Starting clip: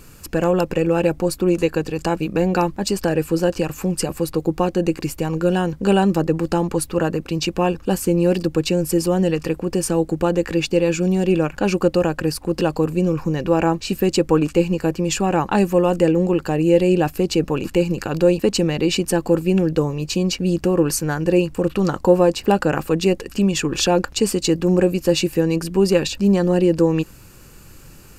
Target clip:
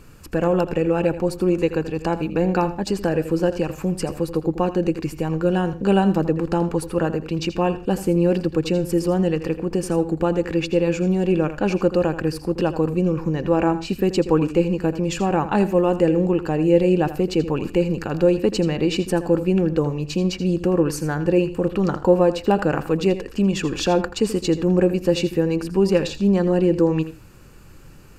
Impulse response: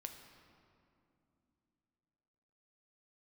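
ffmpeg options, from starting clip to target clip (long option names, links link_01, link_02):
-filter_complex "[0:a]highshelf=frequency=4400:gain=-10,asplit=2[link_01][link_02];[1:a]atrim=start_sample=2205,atrim=end_sample=3969,adelay=82[link_03];[link_02][link_03]afir=irnorm=-1:irlink=0,volume=-8dB[link_04];[link_01][link_04]amix=inputs=2:normalize=0,volume=-1.5dB"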